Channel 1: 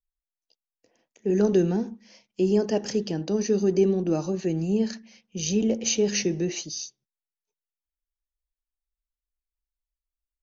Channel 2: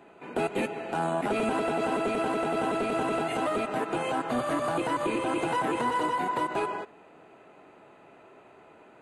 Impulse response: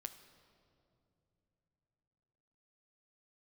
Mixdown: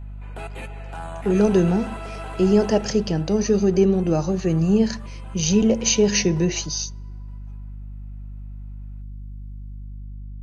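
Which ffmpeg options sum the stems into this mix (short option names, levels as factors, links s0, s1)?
-filter_complex "[0:a]tiltshelf=f=970:g=5,dynaudnorm=f=150:g=9:m=3.98,volume=1.26,asplit=2[s0][s1];[s1]volume=0.119[s2];[1:a]volume=0.668,afade=t=out:st=2.67:d=0.32:silence=0.281838,asplit=2[s3][s4];[s4]volume=0.106[s5];[2:a]atrim=start_sample=2205[s6];[s2][s6]afir=irnorm=-1:irlink=0[s7];[s5]aecho=0:1:916:1[s8];[s0][s3][s7][s8]amix=inputs=4:normalize=0,aeval=exprs='val(0)+0.0251*(sin(2*PI*50*n/s)+sin(2*PI*2*50*n/s)/2+sin(2*PI*3*50*n/s)/3+sin(2*PI*4*50*n/s)/4+sin(2*PI*5*50*n/s)/5)':c=same,equalizer=f=300:t=o:w=1.7:g=-11.5"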